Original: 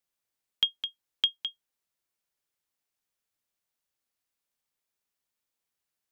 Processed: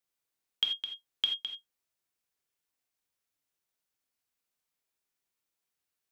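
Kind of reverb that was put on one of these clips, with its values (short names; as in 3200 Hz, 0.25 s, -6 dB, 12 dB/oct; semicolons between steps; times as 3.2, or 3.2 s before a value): non-linear reverb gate 0.11 s flat, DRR 2.5 dB; gain -2.5 dB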